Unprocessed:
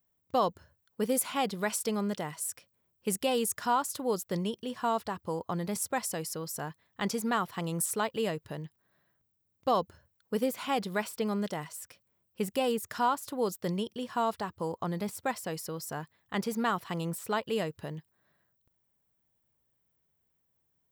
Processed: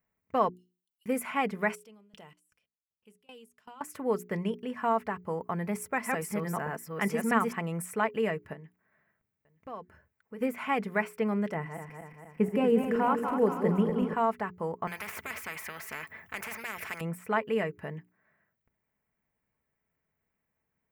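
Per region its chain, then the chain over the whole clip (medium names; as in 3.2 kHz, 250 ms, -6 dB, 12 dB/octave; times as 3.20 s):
0.49–1.06 s: compression 2.5:1, threshold -46 dBFS + rippled Chebyshev high-pass 2.8 kHz, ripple 6 dB
1.75–3.81 s: resonant high shelf 2.5 kHz +7 dB, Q 3 + level held to a coarse grid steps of 22 dB + sawtooth tremolo in dB decaying 2.6 Hz, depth 24 dB
5.40–7.53 s: chunks repeated in reverse 637 ms, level -1 dB + treble shelf 8.7 kHz +4.5 dB
8.53–10.41 s: compression 2:1, threshold -51 dBFS + delay 920 ms -20.5 dB
11.54–14.14 s: backward echo that repeats 118 ms, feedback 77%, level -7 dB + tilt shelf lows +5.5 dB, about 830 Hz
14.87–17.01 s: band-stop 7.8 kHz + spectrum-flattening compressor 10:1
whole clip: resonant high shelf 2.9 kHz -10 dB, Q 3; hum notches 60/120/180/240/300/360/420 Hz; comb 4.6 ms, depth 35%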